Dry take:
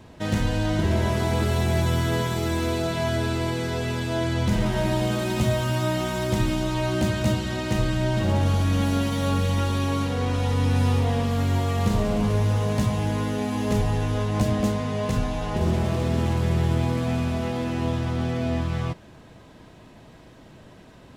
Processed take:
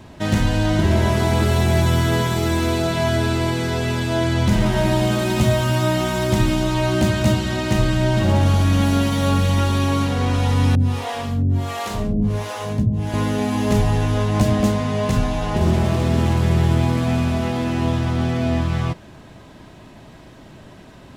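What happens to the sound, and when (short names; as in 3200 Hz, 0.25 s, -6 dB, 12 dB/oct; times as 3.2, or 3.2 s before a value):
10.75–13.14 harmonic tremolo 1.4 Hz, depth 100%, crossover 410 Hz
whole clip: notch 480 Hz, Q 12; gain +5.5 dB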